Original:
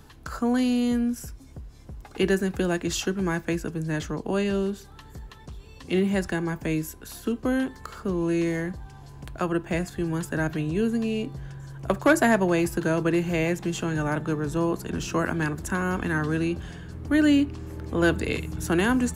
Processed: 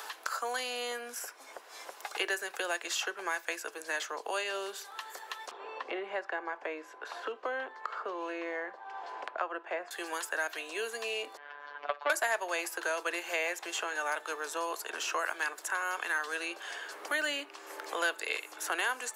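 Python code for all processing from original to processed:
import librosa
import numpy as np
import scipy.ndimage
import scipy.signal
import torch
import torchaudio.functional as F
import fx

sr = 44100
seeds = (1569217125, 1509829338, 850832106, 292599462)

y = fx.chain(x, sr, fx.lowpass(hz=1200.0, slope=12),
    fx.band_squash(depth_pct=40), at=(5.51, 9.91))
y = fx.chain(y, sr, fx.bessel_lowpass(hz=2200.0, order=6),
    fx.robotise(hz=145.0), at=(11.37, 12.1))
y = scipy.signal.sosfilt(scipy.signal.bessel(6, 830.0, 'highpass', norm='mag', fs=sr, output='sos'), y)
y = fx.band_squash(y, sr, depth_pct=70)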